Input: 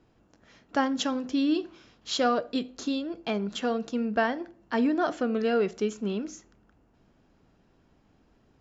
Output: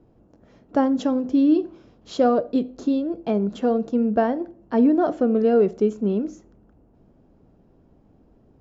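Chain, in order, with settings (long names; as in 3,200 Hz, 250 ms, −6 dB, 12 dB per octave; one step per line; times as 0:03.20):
drawn EQ curve 560 Hz 0 dB, 1,700 Hz −14 dB, 3,100 Hz −16 dB
level +8 dB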